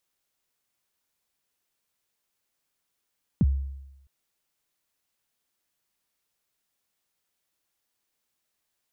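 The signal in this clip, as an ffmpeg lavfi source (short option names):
-f lavfi -i "aevalsrc='0.178*pow(10,-3*t/0.94)*sin(2*PI*(250*0.037/log(68/250)*(exp(log(68/250)*min(t,0.037)/0.037)-1)+68*max(t-0.037,0)))':d=0.66:s=44100"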